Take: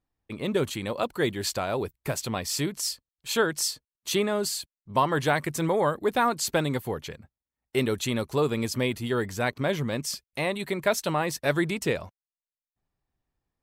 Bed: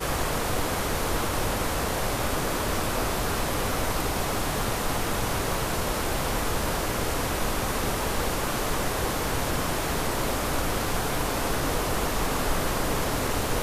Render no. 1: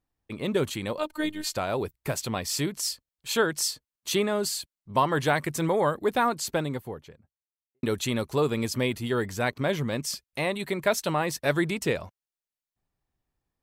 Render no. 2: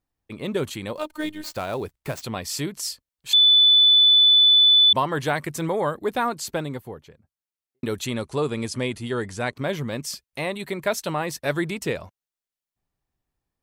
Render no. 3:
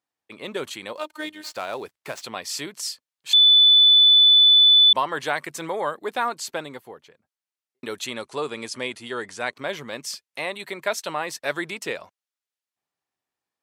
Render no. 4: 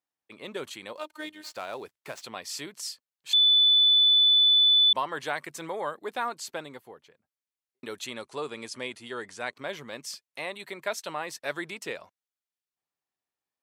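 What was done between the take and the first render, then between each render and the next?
0.98–1.56 robotiser 307 Hz; 6.03–7.83 studio fade out
0.95–2.22 switching dead time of 0.05 ms; 3.33–4.93 bleep 3490 Hz -11.5 dBFS; 8.06–9.56 careless resampling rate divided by 2×, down none, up filtered
weighting filter A
gain -6 dB

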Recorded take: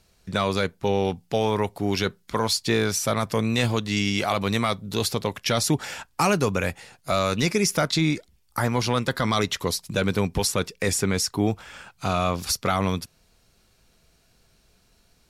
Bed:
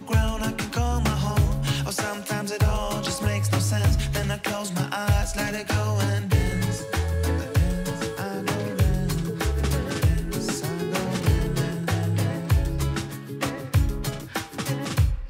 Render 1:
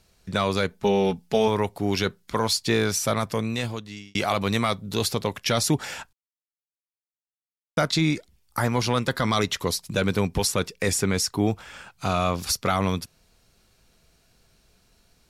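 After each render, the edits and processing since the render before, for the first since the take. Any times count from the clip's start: 0.7–1.48 comb 4.7 ms; 3.12–4.15 fade out; 6.13–7.77 mute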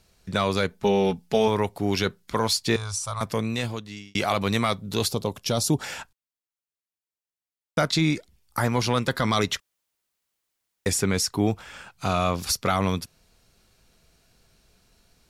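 2.76–3.21 EQ curve 100 Hz 0 dB, 240 Hz -27 dB, 350 Hz -25 dB, 1100 Hz 0 dB, 1800 Hz -17 dB, 4300 Hz -6 dB, 9600 Hz 0 dB, 14000 Hz -25 dB; 5.08–5.81 bell 1900 Hz -14.5 dB 1 oct; 9.6–10.86 room tone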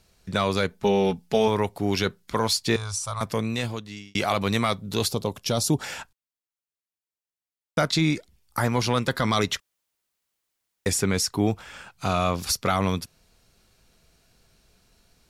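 nothing audible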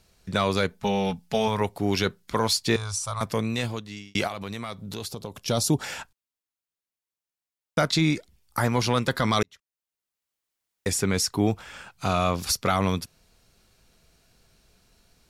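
0.81–1.61 bell 350 Hz -13.5 dB 0.55 oct; 4.27–5.48 compressor 3:1, threshold -33 dBFS; 9.43–11.24 fade in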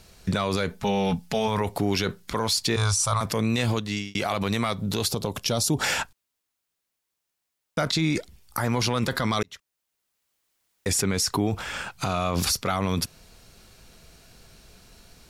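in parallel at 0 dB: negative-ratio compressor -31 dBFS, ratio -0.5; on the sum: limiter -14 dBFS, peak gain reduction 5.5 dB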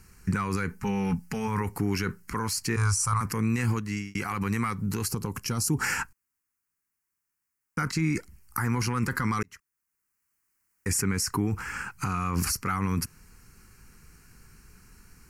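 fixed phaser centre 1500 Hz, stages 4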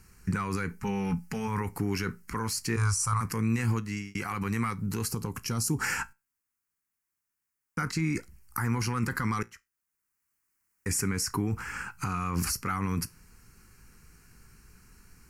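resonator 57 Hz, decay 0.22 s, harmonics all, mix 40%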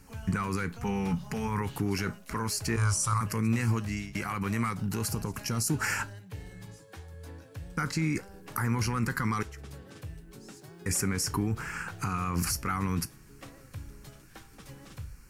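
add bed -21 dB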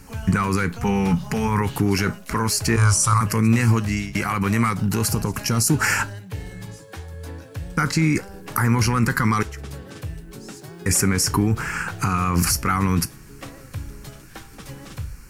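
gain +10 dB

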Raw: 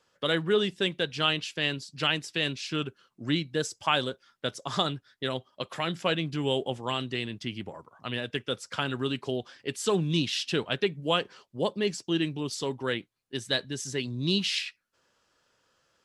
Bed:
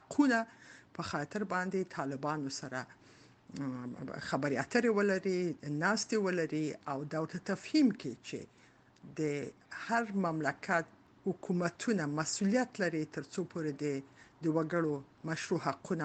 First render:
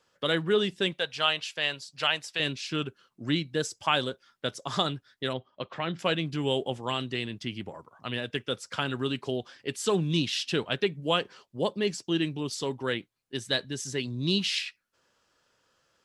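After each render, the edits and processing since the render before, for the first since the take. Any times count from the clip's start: 0.93–2.4 resonant low shelf 450 Hz -9.5 dB, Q 1.5; 5.33–5.99 air absorption 210 m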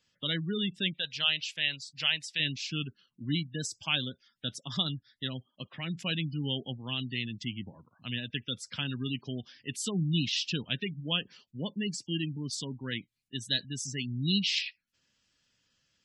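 spectral gate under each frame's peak -20 dB strong; band shelf 720 Hz -14 dB 2.4 oct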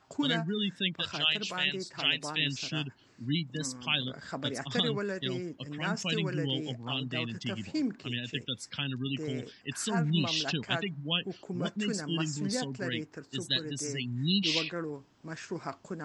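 add bed -4 dB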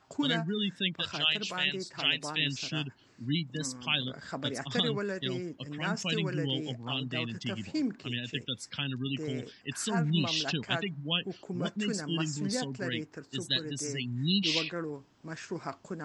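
nothing audible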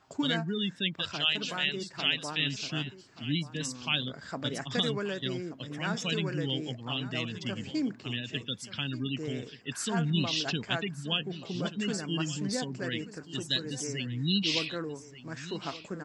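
echo 1.181 s -15 dB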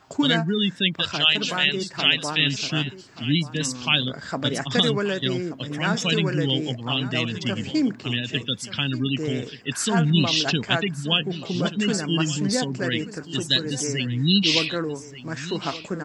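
gain +9 dB

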